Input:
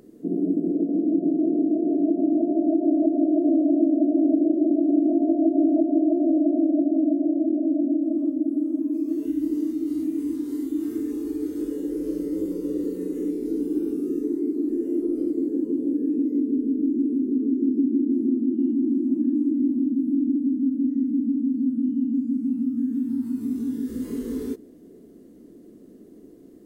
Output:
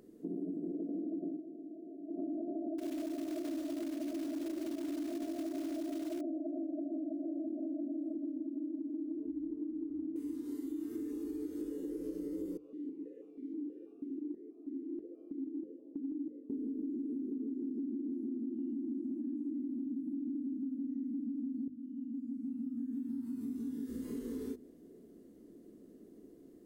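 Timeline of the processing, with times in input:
1.25–2.25 s: dip -17 dB, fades 0.17 s
2.78–6.21 s: short-mantissa float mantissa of 2-bit
8.14–10.16 s: Bessel low-pass 520 Hz
12.57–16.50 s: stepped vowel filter 6.2 Hz
21.68–23.03 s: fade in linear, from -16 dB
whole clip: hum notches 50/100/150/200/250/300 Hz; peak limiter -18 dBFS; compression 3:1, threshold -29 dBFS; trim -8 dB

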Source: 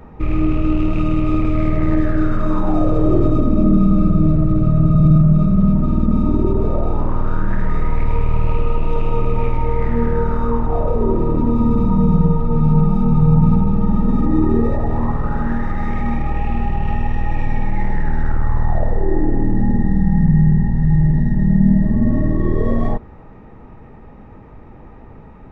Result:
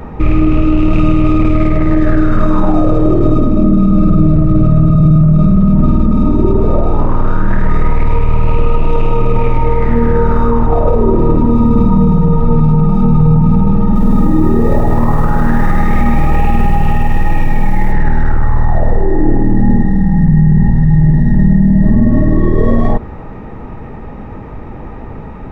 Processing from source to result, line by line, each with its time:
13.86–17.92 s: bit-crushed delay 97 ms, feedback 55%, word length 7-bit, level -10 dB
whole clip: loudness maximiser +13.5 dB; trim -1 dB

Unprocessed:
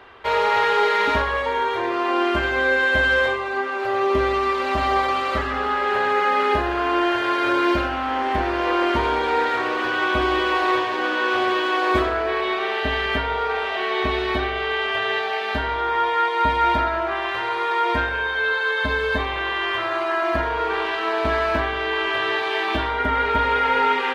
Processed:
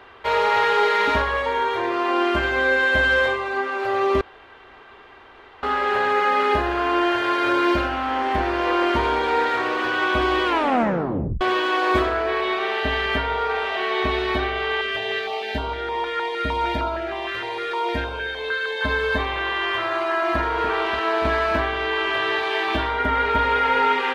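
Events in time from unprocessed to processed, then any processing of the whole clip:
4.21–5.63 s: room tone
10.45 s: tape stop 0.96 s
14.81–18.82 s: step-sequenced notch 6.5 Hz 850–1800 Hz
19.99–20.41 s: echo throw 290 ms, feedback 70%, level -8 dB

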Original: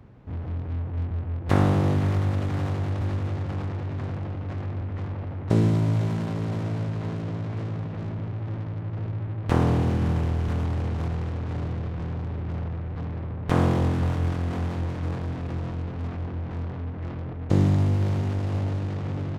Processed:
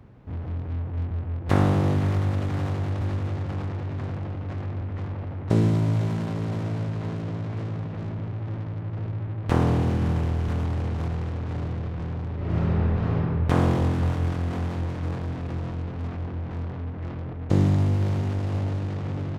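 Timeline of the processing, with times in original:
12.36–13.16 s: reverb throw, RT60 2.5 s, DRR -8.5 dB

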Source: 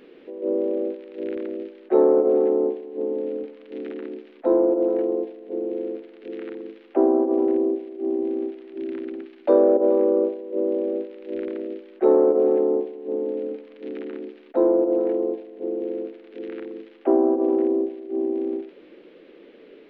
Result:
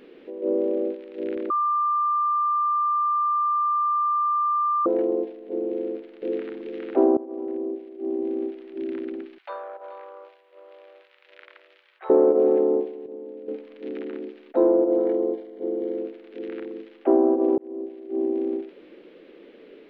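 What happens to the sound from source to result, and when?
1.50–4.86 s: bleep 1.19 kHz -19.5 dBFS
5.81–6.62 s: echo throw 410 ms, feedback 10%, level 0 dB
7.17–8.60 s: fade in, from -17.5 dB
9.38–12.10 s: high-pass 1 kHz 24 dB/octave
13.06–13.48 s: gain -11.5 dB
14.67–15.98 s: Butterworth band-stop 2.6 kHz, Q 6.6
17.58–18.23 s: fade in

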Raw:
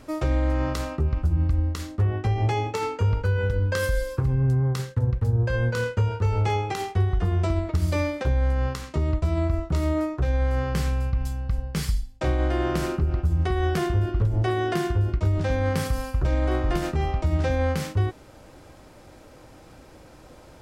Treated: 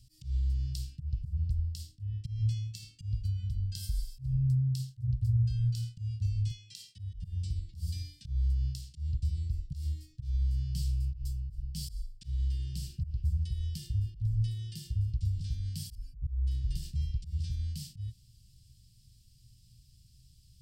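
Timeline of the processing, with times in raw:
6.51–6.99 s: frequency weighting A
15.95–16.47 s: spectral contrast enhancement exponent 1.6
whole clip: rippled EQ curve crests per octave 1.3, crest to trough 6 dB; slow attack 141 ms; elliptic band-stop 140–3900 Hz, stop band 70 dB; trim -6.5 dB

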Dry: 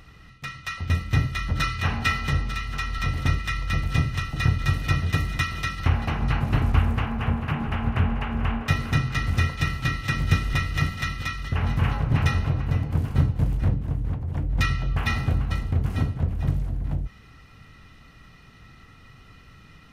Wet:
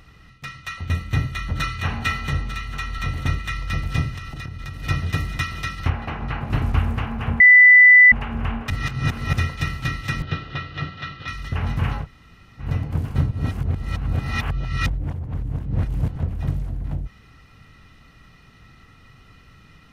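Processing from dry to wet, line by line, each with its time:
0.66–3.52 s: band-stop 5.1 kHz, Q 9.1
4.12–4.83 s: compression 16:1, threshold -28 dBFS
5.90–6.50 s: tone controls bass -5 dB, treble -11 dB
7.40–8.12 s: bleep 1.99 kHz -6 dBFS
8.70–9.33 s: reverse
10.22–11.28 s: cabinet simulation 140–4000 Hz, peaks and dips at 220 Hz -9 dB, 920 Hz -4 dB, 2.2 kHz -9 dB
12.03–12.62 s: room tone, crossfade 0.10 s
13.31–16.16 s: reverse

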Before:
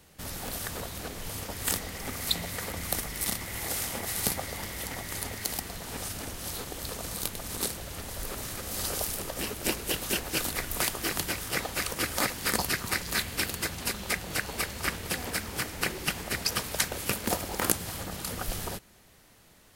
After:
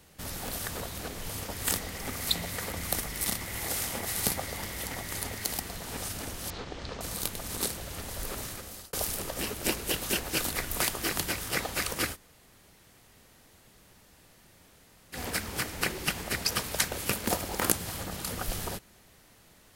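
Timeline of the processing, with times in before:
6.50–7.01 s: Bessel low-pass 3.9 kHz, order 6
8.39–8.93 s: fade out
12.14–15.15 s: room tone, crossfade 0.06 s

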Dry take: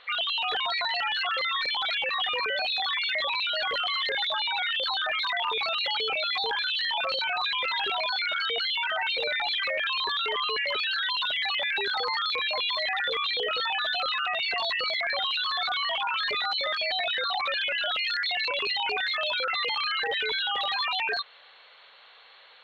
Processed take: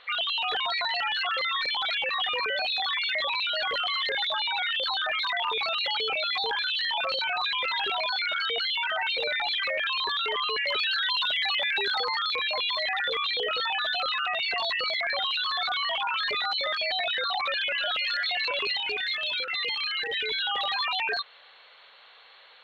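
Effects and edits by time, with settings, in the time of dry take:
10.65–12.03 s: treble shelf 4.3 kHz +5 dB
17.41–18.05 s: echo throw 330 ms, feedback 70%, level -17 dB
18.77–20.39 s: high-order bell 890 Hz -10 dB

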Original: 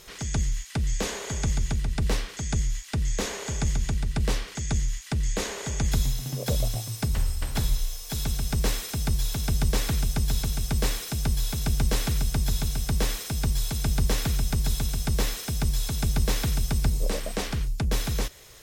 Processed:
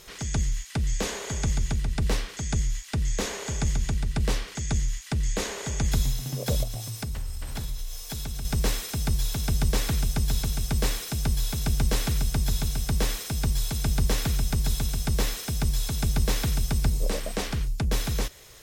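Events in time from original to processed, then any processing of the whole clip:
6.63–8.45 s: compression 3:1, threshold -30 dBFS

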